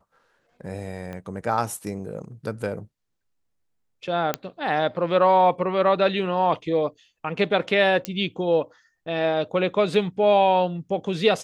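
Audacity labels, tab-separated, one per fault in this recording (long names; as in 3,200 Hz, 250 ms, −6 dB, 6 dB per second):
1.130000	1.130000	click −23 dBFS
4.340000	4.340000	click −8 dBFS
8.050000	8.050000	click −11 dBFS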